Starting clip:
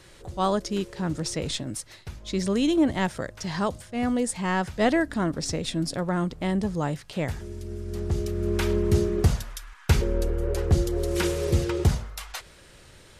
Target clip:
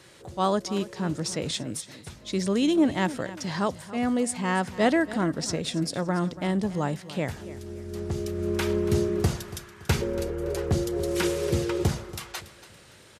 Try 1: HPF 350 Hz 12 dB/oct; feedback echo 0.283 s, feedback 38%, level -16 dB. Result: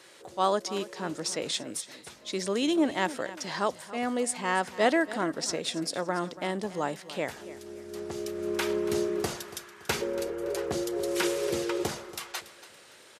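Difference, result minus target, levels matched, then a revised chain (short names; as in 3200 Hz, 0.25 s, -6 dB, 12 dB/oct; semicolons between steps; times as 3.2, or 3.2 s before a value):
125 Hz band -11.0 dB
HPF 110 Hz 12 dB/oct; feedback echo 0.283 s, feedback 38%, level -16 dB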